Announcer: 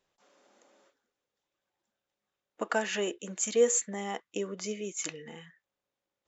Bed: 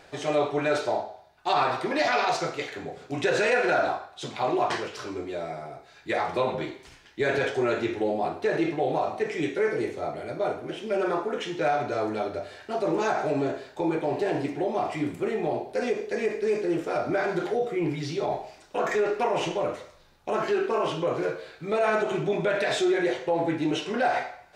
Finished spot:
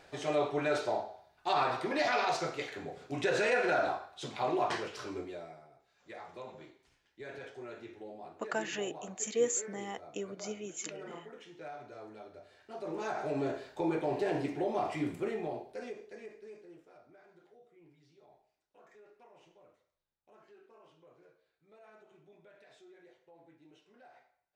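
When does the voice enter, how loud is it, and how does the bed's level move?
5.80 s, -5.5 dB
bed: 5.19 s -6 dB
5.69 s -20.5 dB
12.31 s -20.5 dB
13.53 s -5.5 dB
15.16 s -5.5 dB
17.17 s -34.5 dB

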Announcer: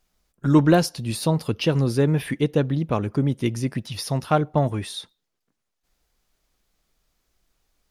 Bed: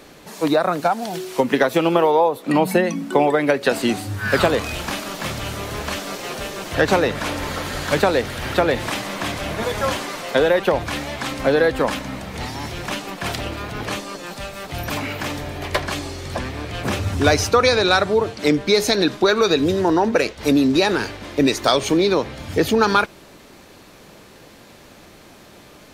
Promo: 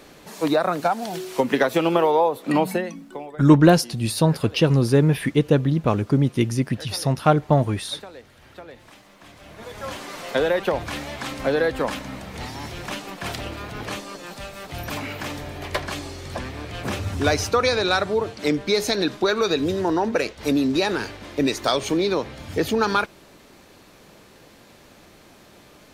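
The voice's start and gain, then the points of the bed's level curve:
2.95 s, +3.0 dB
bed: 2.59 s -2.5 dB
3.39 s -23.5 dB
9.18 s -23.5 dB
10.22 s -4.5 dB

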